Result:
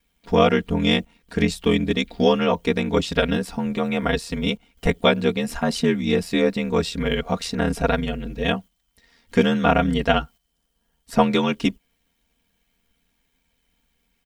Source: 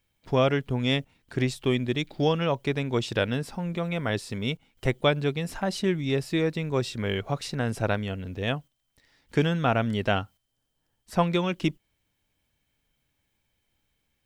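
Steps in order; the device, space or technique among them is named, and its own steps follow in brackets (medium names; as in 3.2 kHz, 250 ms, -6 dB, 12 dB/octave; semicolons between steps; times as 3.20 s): ring-modulated robot voice (ring modulator 41 Hz; comb 4.3 ms, depth 82%); trim +6.5 dB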